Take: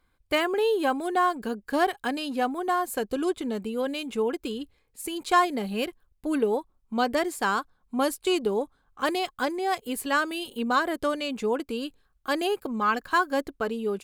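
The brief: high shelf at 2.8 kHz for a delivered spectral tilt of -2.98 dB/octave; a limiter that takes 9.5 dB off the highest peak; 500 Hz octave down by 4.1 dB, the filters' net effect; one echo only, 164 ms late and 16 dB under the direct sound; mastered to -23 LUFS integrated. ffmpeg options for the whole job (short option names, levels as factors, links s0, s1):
-af "equalizer=f=500:t=o:g=-5.5,highshelf=f=2800:g=3,alimiter=limit=0.0944:level=0:latency=1,aecho=1:1:164:0.158,volume=2.66"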